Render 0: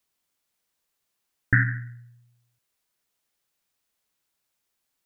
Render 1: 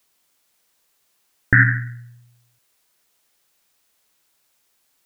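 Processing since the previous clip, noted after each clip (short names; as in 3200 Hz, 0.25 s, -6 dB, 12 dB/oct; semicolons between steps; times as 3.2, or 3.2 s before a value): tone controls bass -4 dB, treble +1 dB; maximiser +12.5 dB; gain -1 dB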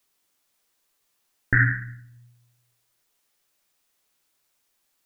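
shoebox room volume 57 m³, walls mixed, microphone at 0.32 m; gain -6.5 dB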